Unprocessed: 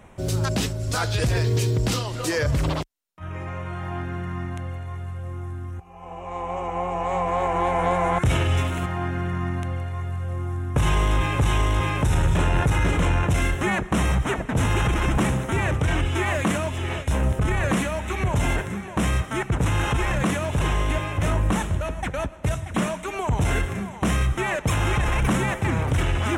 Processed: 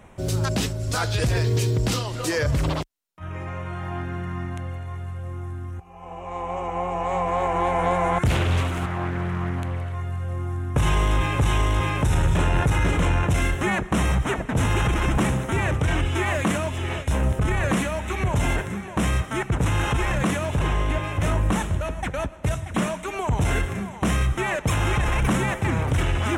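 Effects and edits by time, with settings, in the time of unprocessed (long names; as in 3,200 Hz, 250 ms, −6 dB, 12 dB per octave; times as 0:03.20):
0:08.26–0:09.95: highs frequency-modulated by the lows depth 0.74 ms
0:20.56–0:21.04: high-shelf EQ 4,000 Hz −6.5 dB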